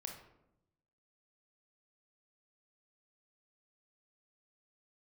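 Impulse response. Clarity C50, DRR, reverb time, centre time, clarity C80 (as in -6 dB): 5.5 dB, 2.0 dB, 0.85 s, 29 ms, 9.0 dB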